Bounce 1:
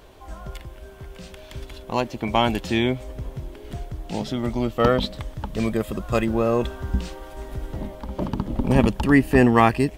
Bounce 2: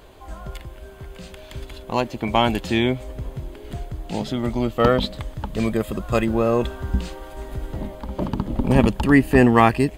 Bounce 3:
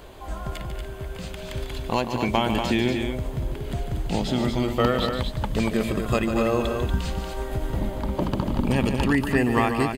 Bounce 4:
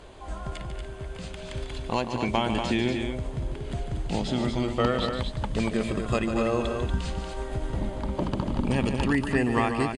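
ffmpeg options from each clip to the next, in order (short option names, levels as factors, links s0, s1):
-af "bandreject=f=5600:w=9.3,volume=1.19"
-filter_complex "[0:a]acrossover=split=1800|7600[s0][s1][s2];[s0]acompressor=threshold=0.0631:ratio=4[s3];[s1]acompressor=threshold=0.02:ratio=4[s4];[s2]acompressor=threshold=0.00251:ratio=4[s5];[s3][s4][s5]amix=inputs=3:normalize=0,aecho=1:1:145.8|236.2:0.355|0.501,volume=1.41"
-af "aresample=22050,aresample=44100,volume=0.708"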